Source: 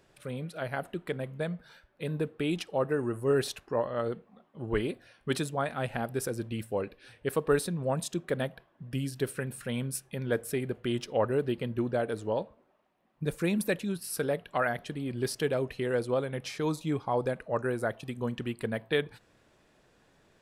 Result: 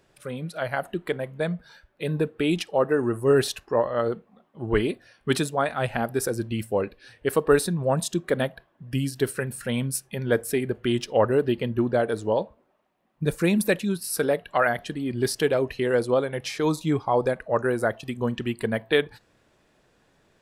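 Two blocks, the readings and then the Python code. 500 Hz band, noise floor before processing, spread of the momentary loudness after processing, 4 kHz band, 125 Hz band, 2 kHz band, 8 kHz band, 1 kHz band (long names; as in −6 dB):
+7.0 dB, −66 dBFS, 9 LU, +7.0 dB, +5.0 dB, +7.0 dB, +7.0 dB, +7.0 dB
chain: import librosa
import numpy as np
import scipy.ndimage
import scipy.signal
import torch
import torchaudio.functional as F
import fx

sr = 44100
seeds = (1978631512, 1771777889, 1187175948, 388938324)

y = fx.noise_reduce_blind(x, sr, reduce_db=6)
y = F.gain(torch.from_numpy(y), 7.0).numpy()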